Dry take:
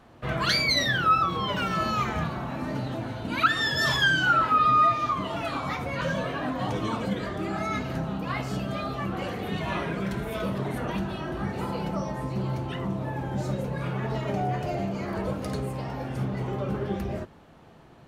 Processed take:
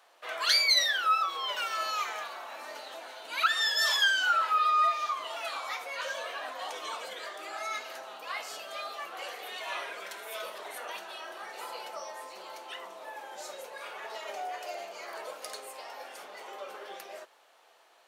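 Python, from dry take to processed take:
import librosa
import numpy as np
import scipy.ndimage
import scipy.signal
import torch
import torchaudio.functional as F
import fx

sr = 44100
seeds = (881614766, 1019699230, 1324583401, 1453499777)

y = scipy.signal.sosfilt(scipy.signal.butter(4, 520.0, 'highpass', fs=sr, output='sos'), x)
y = fx.high_shelf(y, sr, hz=2600.0, db=11.5)
y = y * 10.0 ** (-7.0 / 20.0)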